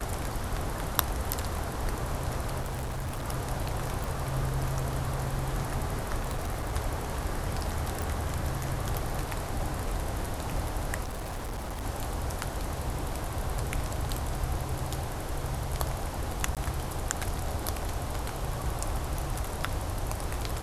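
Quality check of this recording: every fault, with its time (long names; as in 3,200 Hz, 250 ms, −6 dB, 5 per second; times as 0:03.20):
0:02.60–0:03.26: clipping −30 dBFS
0:04.04: click
0:06.20–0:06.75: clipping −27.5 dBFS
0:08.02: click
0:11.03–0:11.84: clipping −32 dBFS
0:16.55–0:16.57: drop-out 17 ms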